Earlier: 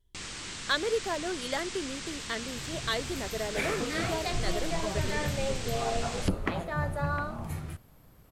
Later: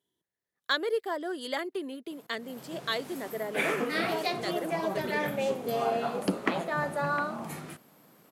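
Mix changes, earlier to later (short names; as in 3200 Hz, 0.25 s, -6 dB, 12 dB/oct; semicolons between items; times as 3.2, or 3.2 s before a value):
first sound: muted; second sound +3.5 dB; master: add HPF 190 Hz 24 dB/oct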